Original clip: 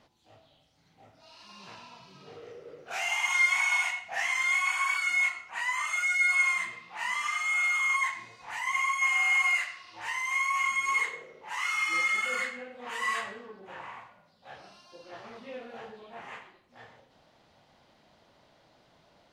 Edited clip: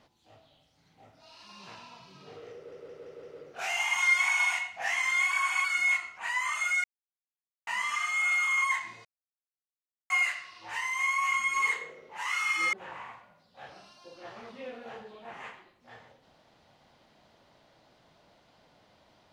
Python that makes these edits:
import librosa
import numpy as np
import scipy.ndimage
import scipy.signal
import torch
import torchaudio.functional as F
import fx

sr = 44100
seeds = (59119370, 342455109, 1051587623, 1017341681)

y = fx.edit(x, sr, fx.stutter(start_s=2.55, slice_s=0.17, count=5),
    fx.reverse_span(start_s=4.63, length_s=0.33),
    fx.silence(start_s=6.16, length_s=0.83),
    fx.silence(start_s=8.37, length_s=1.05),
    fx.cut(start_s=12.05, length_s=1.56), tone=tone)